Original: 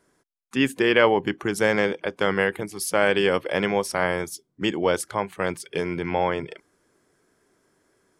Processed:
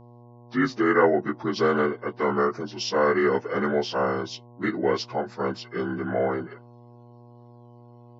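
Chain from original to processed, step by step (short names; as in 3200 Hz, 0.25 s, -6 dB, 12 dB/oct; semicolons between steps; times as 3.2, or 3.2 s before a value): inharmonic rescaling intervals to 82%; spectral noise reduction 18 dB; buzz 120 Hz, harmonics 9, -49 dBFS -5 dB/oct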